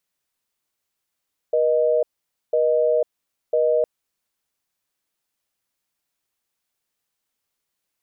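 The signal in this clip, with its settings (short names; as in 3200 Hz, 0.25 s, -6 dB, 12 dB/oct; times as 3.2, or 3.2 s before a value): call progress tone busy tone, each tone -18.5 dBFS 2.31 s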